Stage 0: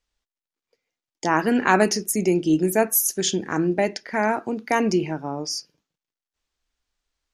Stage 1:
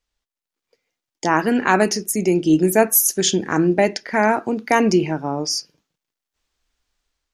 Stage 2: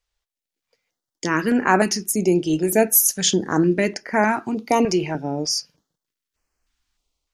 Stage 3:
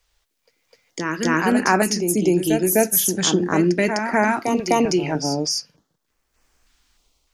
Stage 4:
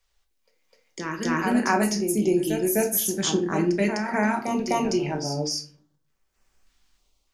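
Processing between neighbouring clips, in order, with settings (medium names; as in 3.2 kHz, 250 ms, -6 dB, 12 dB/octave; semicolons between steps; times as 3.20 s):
level rider gain up to 6 dB
step-sequenced notch 3.3 Hz 240–3600 Hz
reverse echo 254 ms -7.5 dB; three bands compressed up and down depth 40%
simulated room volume 300 m³, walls furnished, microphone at 1.1 m; trim -7 dB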